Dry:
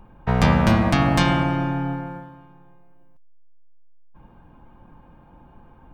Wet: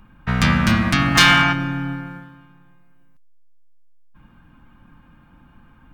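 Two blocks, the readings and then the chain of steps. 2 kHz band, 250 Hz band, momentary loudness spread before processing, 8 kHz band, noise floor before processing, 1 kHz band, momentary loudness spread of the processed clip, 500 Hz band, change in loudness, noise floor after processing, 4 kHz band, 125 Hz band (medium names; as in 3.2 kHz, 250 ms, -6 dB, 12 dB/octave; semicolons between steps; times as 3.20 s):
+10.0 dB, 0.0 dB, 14 LU, +10.5 dB, -51 dBFS, +2.5 dB, 17 LU, -6.5 dB, +3.5 dB, -52 dBFS, +11.5 dB, -0.5 dB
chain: high-order bell 590 Hz -12.5 dB; time-frequency box 1.15–1.53 s, 660–7200 Hz +9 dB; bass shelf 300 Hz -7.5 dB; hard clipper -13 dBFS, distortion -14 dB; trim +6 dB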